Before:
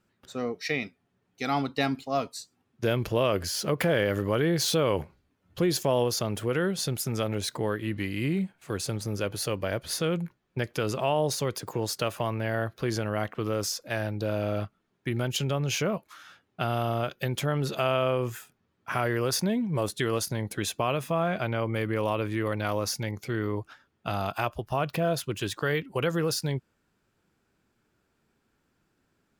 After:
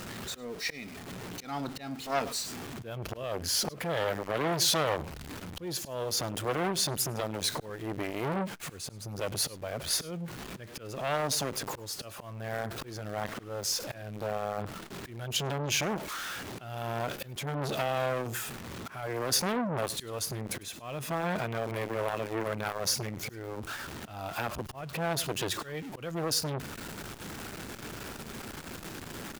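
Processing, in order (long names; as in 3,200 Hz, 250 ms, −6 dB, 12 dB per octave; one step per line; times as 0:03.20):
converter with a step at zero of −35 dBFS
volume swells 412 ms
single-tap delay 102 ms −21.5 dB
saturating transformer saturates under 1,900 Hz
level +1.5 dB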